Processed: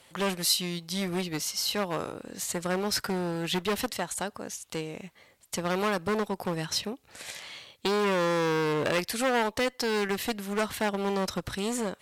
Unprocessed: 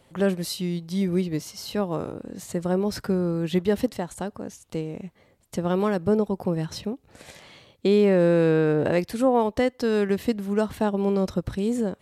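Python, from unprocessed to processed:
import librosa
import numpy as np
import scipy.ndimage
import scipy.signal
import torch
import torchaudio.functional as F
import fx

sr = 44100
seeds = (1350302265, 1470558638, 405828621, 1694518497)

y = fx.clip_asym(x, sr, top_db=-23.5, bottom_db=-16.0)
y = fx.tilt_shelf(y, sr, db=-8.0, hz=770.0)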